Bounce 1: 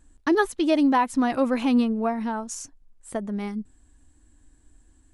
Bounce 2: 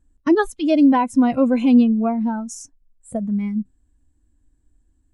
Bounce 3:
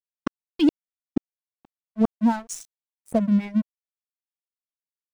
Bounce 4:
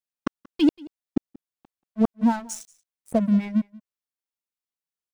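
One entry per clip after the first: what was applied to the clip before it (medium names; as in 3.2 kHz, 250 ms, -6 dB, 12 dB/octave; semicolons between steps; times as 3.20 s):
spectral noise reduction 14 dB; bass shelf 440 Hz +10 dB
inverted gate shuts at -12 dBFS, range -40 dB; reverb removal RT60 1.1 s; crossover distortion -40.5 dBFS; trim +4.5 dB
delay 182 ms -23 dB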